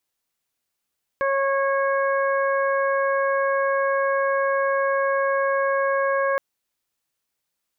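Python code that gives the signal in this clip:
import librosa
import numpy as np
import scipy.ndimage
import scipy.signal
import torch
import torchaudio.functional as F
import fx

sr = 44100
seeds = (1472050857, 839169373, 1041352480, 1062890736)

y = fx.additive_steady(sr, length_s=5.17, hz=548.0, level_db=-21, upper_db=(-3.5, -5.5, -16.0))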